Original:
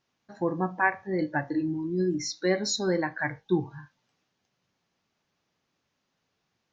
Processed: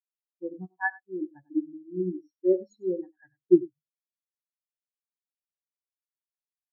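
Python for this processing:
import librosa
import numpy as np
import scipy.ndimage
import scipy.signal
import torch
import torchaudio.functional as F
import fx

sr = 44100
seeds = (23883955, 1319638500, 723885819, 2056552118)

p1 = x + fx.echo_single(x, sr, ms=97, db=-5.5, dry=0)
p2 = fx.spectral_expand(p1, sr, expansion=4.0)
y = F.gain(torch.from_numpy(p2), 2.5).numpy()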